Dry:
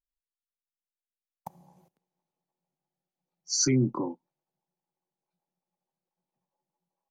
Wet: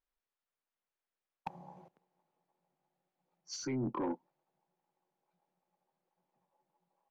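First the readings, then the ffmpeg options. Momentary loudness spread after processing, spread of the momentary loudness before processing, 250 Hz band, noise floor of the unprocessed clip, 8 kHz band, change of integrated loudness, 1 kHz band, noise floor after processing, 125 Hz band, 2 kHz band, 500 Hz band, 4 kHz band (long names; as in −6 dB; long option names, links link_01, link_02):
19 LU, 12 LU, −9.0 dB, below −85 dBFS, −19.0 dB, −13.0 dB, −1.0 dB, below −85 dBFS, −13.5 dB, −9.0 dB, −7.5 dB, −15.0 dB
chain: -filter_complex "[0:a]asplit=2[link_01][link_02];[link_02]highpass=frequency=720:poles=1,volume=11dB,asoftclip=type=tanh:threshold=-14dB[link_03];[link_01][link_03]amix=inputs=2:normalize=0,lowpass=frequency=1200:poles=1,volume=-6dB,areverse,acompressor=threshold=-35dB:ratio=16,areverse,lowpass=frequency=3600:poles=1,asoftclip=type=tanh:threshold=-34dB,volume=5.5dB"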